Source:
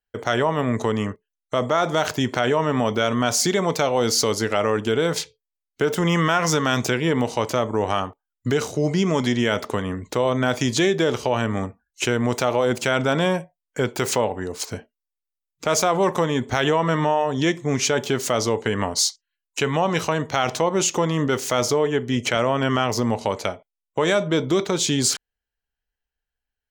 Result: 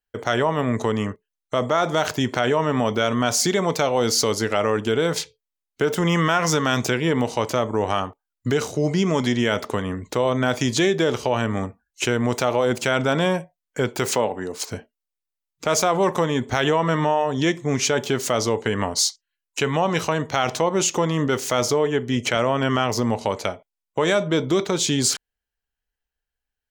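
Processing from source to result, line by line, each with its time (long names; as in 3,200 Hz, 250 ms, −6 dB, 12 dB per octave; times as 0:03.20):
0:14.08–0:14.66: high-pass filter 130 Hz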